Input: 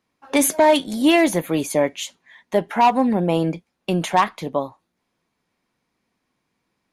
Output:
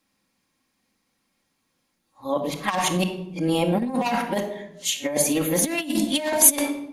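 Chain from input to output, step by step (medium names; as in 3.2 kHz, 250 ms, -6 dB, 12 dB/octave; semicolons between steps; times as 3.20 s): reverse the whole clip; simulated room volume 2300 m³, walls furnished, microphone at 2.2 m; compressor with a negative ratio -17 dBFS, ratio -0.5; treble shelf 3.6 kHz +11.5 dB; trim -5.5 dB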